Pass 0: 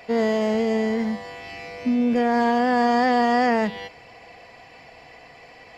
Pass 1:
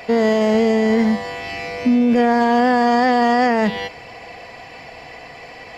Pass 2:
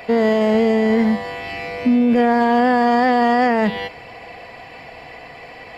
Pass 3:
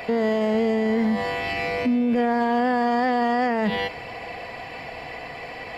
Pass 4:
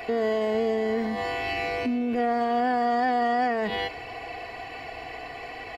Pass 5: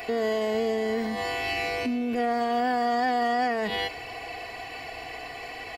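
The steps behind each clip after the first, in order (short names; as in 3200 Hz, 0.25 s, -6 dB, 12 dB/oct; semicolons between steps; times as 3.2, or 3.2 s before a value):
limiter -18 dBFS, peak gain reduction 6.5 dB; gain +9 dB
bell 6100 Hz -9.5 dB 0.63 oct
limiter -17.5 dBFS, peak gain reduction 8.5 dB; gain +2 dB
comb 2.7 ms, depth 59%; gain -4 dB
high shelf 4100 Hz +11 dB; gain -1.5 dB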